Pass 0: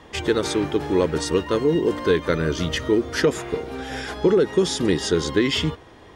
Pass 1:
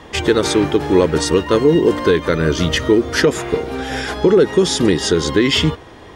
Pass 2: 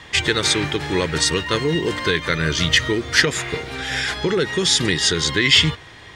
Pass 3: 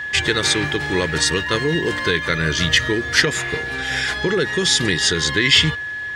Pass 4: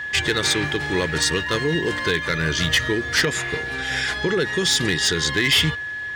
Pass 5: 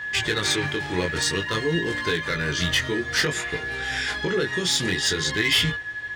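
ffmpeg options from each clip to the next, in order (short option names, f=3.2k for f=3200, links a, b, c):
-af "alimiter=limit=-10.5dB:level=0:latency=1:release=179,volume=7.5dB"
-af "equalizer=f=125:t=o:w=1:g=7,equalizer=f=250:t=o:w=1:g=-4,equalizer=f=500:t=o:w=1:g=-3,equalizer=f=2k:t=o:w=1:g=10,equalizer=f=4k:t=o:w=1:g=8,equalizer=f=8k:t=o:w=1:g=8,volume=-6.5dB"
-af "aeval=exprs='val(0)+0.0562*sin(2*PI*1700*n/s)':c=same"
-af "volume=10.5dB,asoftclip=hard,volume=-10.5dB,volume=-2dB"
-af "flanger=delay=17.5:depth=5.2:speed=0.53"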